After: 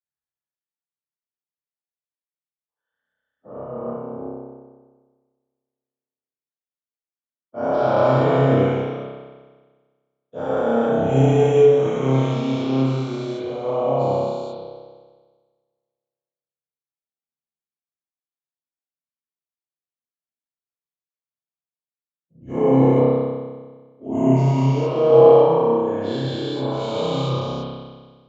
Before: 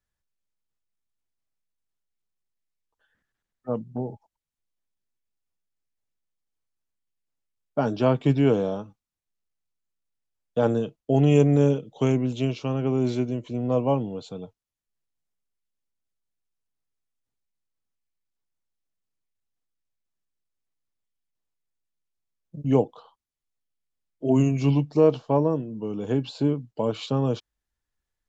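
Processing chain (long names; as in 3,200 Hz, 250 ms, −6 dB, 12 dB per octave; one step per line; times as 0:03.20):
every bin's largest magnitude spread in time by 480 ms
high-pass filter 85 Hz
parametric band 2,700 Hz −7.5 dB 0.3 octaves
mains-hum notches 50/100/150/200/250/300/350/400 Hz
convolution reverb RT60 2.0 s, pre-delay 30 ms, DRR −7.5 dB
multiband upward and downward expander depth 40%
level −9 dB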